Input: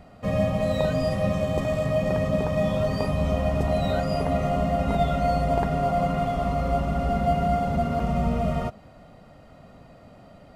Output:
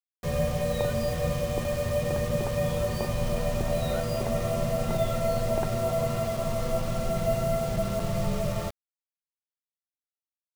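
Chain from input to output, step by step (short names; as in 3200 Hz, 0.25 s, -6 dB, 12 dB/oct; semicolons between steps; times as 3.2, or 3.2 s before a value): frequency shift -39 Hz; bit-crush 6-bit; gain -3.5 dB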